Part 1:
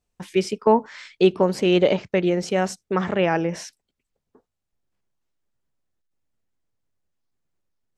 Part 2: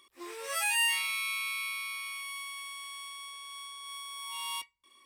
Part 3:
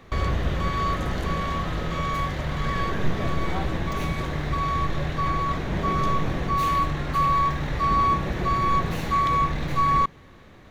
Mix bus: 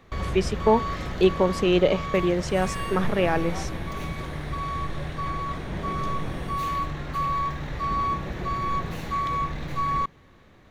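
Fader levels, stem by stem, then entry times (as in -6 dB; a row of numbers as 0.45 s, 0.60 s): -2.5 dB, -15.5 dB, -5.0 dB; 0.00 s, 2.00 s, 0.00 s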